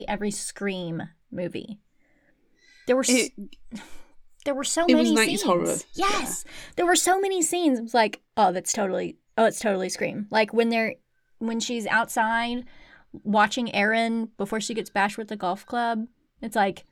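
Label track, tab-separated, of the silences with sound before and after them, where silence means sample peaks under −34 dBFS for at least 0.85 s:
1.730000	2.880000	silence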